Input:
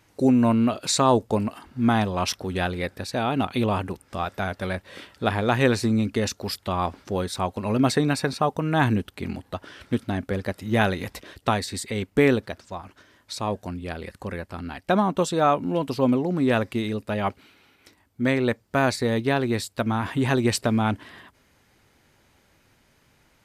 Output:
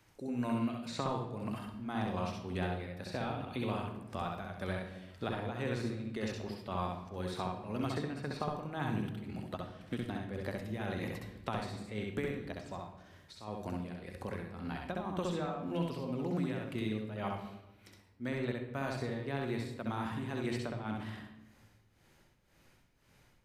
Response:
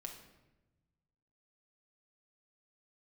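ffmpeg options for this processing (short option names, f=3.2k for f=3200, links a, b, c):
-filter_complex "[0:a]tremolo=f=1.9:d=0.84,acrossover=split=160|1200|3300[a][b][c][d];[a]acompressor=threshold=-41dB:ratio=4[e];[b]acompressor=threshold=-32dB:ratio=4[f];[c]acompressor=threshold=-41dB:ratio=4[g];[d]acompressor=threshold=-53dB:ratio=4[h];[e][f][g][h]amix=inputs=4:normalize=0,asplit=2[i][j];[1:a]atrim=start_sample=2205,lowshelf=f=100:g=8,adelay=65[k];[j][k]afir=irnorm=-1:irlink=0,volume=2.5dB[l];[i][l]amix=inputs=2:normalize=0,volume=-6dB"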